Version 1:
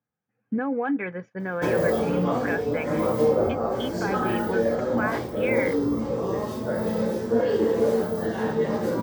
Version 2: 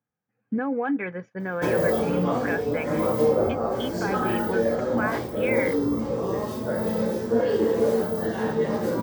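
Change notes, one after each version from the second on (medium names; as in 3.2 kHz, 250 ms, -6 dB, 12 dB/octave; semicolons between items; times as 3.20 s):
master: add treble shelf 11 kHz +4.5 dB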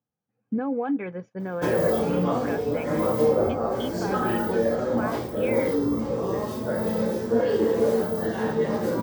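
speech: add peaking EQ 1.8 kHz -9.5 dB 1 oct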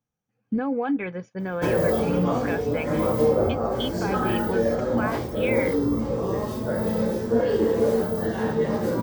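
speech: add treble shelf 2 kHz +11.5 dB; master: remove high-pass 140 Hz 6 dB/octave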